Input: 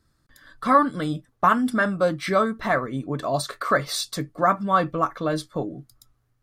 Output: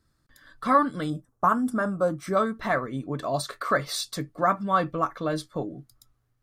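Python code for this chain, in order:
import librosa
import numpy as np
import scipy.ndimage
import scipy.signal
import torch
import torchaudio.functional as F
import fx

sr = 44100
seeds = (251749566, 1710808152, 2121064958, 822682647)

y = fx.band_shelf(x, sr, hz=2900.0, db=-12.5, octaves=1.7, at=(1.1, 2.37))
y = y * librosa.db_to_amplitude(-3.0)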